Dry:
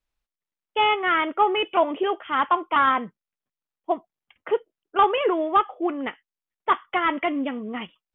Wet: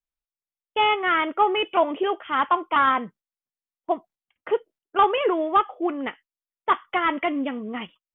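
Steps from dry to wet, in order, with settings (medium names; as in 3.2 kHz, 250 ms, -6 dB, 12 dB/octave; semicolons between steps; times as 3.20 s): gate -48 dBFS, range -13 dB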